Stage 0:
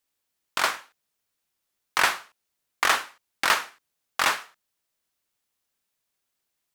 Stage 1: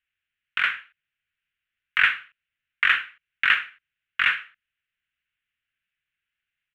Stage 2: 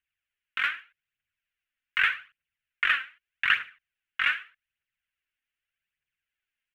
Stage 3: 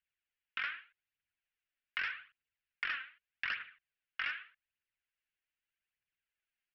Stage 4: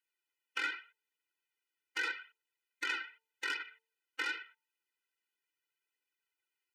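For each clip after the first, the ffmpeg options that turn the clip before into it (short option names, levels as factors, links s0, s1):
-af "firequalizer=gain_entry='entry(100,0);entry(260,-13);entry(830,-23);entry(1500,5);entry(2800,6);entry(4800,-26)':delay=0.05:min_phase=1"
-af "aphaser=in_gain=1:out_gain=1:delay=3.9:decay=0.49:speed=0.83:type=triangular,volume=0.531"
-af "aresample=11025,asoftclip=type=tanh:threshold=0.15,aresample=44100,acompressor=threshold=0.0398:ratio=6,volume=0.531"
-af "aeval=exprs='(tanh(44.7*val(0)+0.6)-tanh(0.6))/44.7':c=same,bandreject=f=224.3:t=h:w=4,bandreject=f=448.6:t=h:w=4,bandreject=f=672.9:t=h:w=4,bandreject=f=897.2:t=h:w=4,afftfilt=real='re*eq(mod(floor(b*sr/1024/260),2),1)':imag='im*eq(mod(floor(b*sr/1024/260),2),1)':win_size=1024:overlap=0.75,volume=2.66"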